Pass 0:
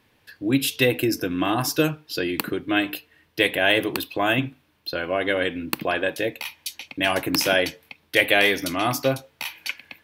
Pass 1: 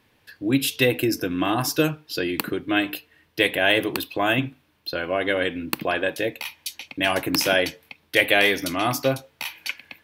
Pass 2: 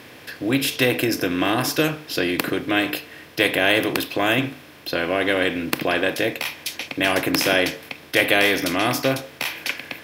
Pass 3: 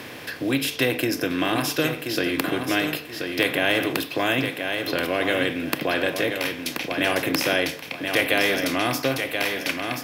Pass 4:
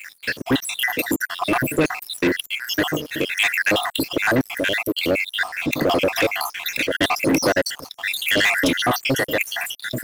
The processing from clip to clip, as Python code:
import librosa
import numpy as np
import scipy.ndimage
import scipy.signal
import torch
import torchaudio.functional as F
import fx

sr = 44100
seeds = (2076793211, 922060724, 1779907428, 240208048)

y1 = x
y2 = fx.bin_compress(y1, sr, power=0.6)
y2 = y2 * librosa.db_to_amplitude(-2.0)
y3 = fx.echo_feedback(y2, sr, ms=1030, feedback_pct=26, wet_db=-8.0)
y3 = fx.band_squash(y3, sr, depth_pct=40)
y3 = y3 * librosa.db_to_amplitude(-3.0)
y4 = fx.spec_dropout(y3, sr, seeds[0], share_pct=74)
y4 = fx.leveller(y4, sr, passes=3)